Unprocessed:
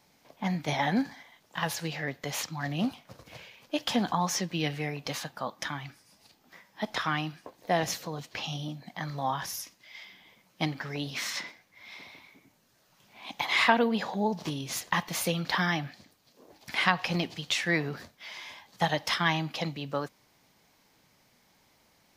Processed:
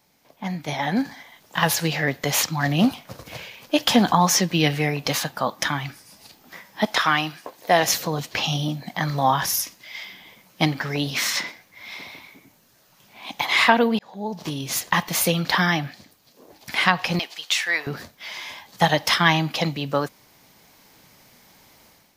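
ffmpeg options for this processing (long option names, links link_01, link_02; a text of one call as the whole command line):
ffmpeg -i in.wav -filter_complex "[0:a]asettb=1/sr,asplit=3[link_01][link_02][link_03];[link_01]atrim=end=6.864[link_04];[link_02]atrim=start=6.86:end=7.94,asetpts=PTS-STARTPTS,afade=type=in:duration=0.004:curve=qsin,afade=type=out:start_time=1.076:duration=0.004:curve=qsin,lowshelf=frequency=280:gain=-11.5[link_05];[link_03]atrim=start=7.936[link_06];[link_04][link_05]acrossfade=duration=0.004:curve1=hsin:curve2=qsin[link_07];[link_07][link_06]acrossfade=duration=0.004:curve1=qsin:curve2=hsin,asettb=1/sr,asplit=3[link_08][link_09][link_10];[link_08]atrim=end=17.194[link_11];[link_09]atrim=start=17.19:end=17.87,asetpts=PTS-STARTPTS,afade=type=in:duration=0.004:curve=qsin,afade=type=out:start_time=0.676:duration=0.004:curve=qsin,highpass=850[link_12];[link_10]atrim=start=17.866[link_13];[link_11][link_12]acrossfade=duration=0.004:curve1=hsin:curve2=qsin[link_14];[link_14][link_13]acrossfade=duration=0.004:curve1=qsin:curve2=hsin,asplit=2[link_15][link_16];[link_15]atrim=end=13.99,asetpts=PTS-STARTPTS,afade=type=out:start_time=13.986:duration=0.004:curve=hsin[link_17];[link_16]atrim=start=13.99,asetpts=PTS-STARTPTS,afade=type=in:duration=0.65[link_18];[link_17][link_18]concat=n=2:v=0:a=1,highshelf=frequency=12000:gain=8.5,dynaudnorm=framelen=810:gausssize=3:maxgain=11.5dB" out.wav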